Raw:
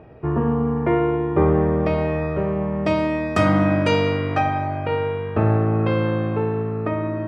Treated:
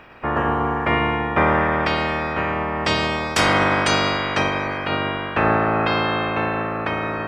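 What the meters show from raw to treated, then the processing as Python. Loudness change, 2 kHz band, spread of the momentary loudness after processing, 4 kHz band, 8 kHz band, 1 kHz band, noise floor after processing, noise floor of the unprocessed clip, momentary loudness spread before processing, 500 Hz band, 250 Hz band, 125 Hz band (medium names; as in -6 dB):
+0.5 dB, +9.0 dB, 6 LU, +10.5 dB, no reading, +5.0 dB, -28 dBFS, -27 dBFS, 6 LU, -2.5 dB, -3.5 dB, -6.0 dB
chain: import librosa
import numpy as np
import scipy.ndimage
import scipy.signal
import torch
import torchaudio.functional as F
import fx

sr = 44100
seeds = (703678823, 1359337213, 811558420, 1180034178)

y = fx.spec_clip(x, sr, under_db=27)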